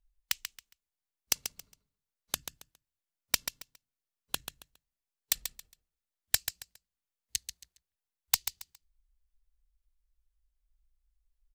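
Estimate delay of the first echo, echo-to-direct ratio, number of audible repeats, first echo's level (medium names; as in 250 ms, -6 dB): 137 ms, -8.5 dB, 3, -9.0 dB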